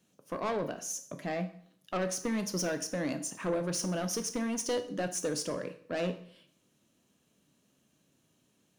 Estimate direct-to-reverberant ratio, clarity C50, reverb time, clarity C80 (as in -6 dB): 8.5 dB, 12.5 dB, 0.55 s, 16.0 dB